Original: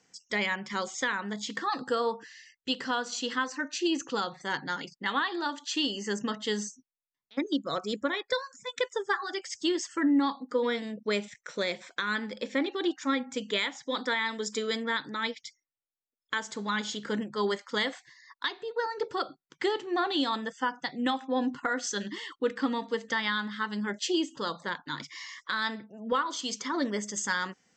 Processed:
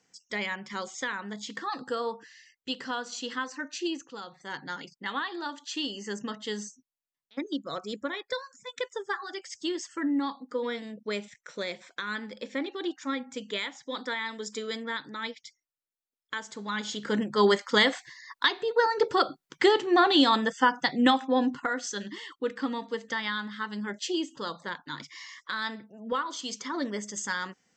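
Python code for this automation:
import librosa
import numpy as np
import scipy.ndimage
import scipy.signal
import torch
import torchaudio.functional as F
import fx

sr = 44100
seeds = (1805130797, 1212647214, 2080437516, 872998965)

y = fx.gain(x, sr, db=fx.line((3.88, -3.0), (4.08, -12.0), (4.69, -3.5), (16.63, -3.5), (17.44, 7.5), (21.06, 7.5), (21.87, -2.0)))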